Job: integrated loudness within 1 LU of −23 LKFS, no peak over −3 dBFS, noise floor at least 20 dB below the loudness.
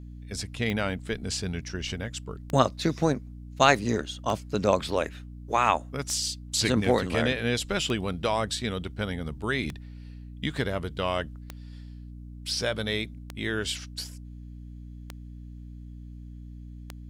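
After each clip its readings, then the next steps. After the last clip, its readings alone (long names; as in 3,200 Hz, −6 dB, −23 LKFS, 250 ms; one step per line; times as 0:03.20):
number of clicks 10; mains hum 60 Hz; hum harmonics up to 300 Hz; level of the hum −39 dBFS; integrated loudness −28.0 LKFS; sample peak −3.5 dBFS; target loudness −23.0 LKFS
→ click removal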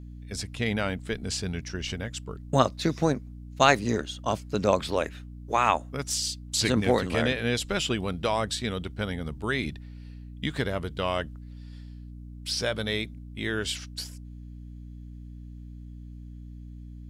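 number of clicks 0; mains hum 60 Hz; hum harmonics up to 300 Hz; level of the hum −39 dBFS
→ mains-hum notches 60/120/180/240/300 Hz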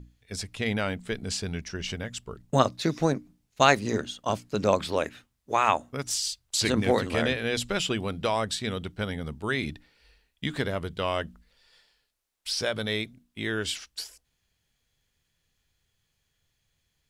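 mains hum none found; integrated loudness −28.5 LKFS; sample peak −3.5 dBFS; target loudness −23.0 LKFS
→ level +5.5 dB
brickwall limiter −3 dBFS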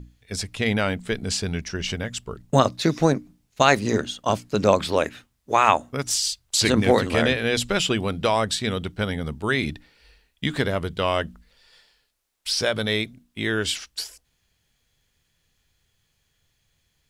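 integrated loudness −23.5 LKFS; sample peak −3.0 dBFS; background noise floor −71 dBFS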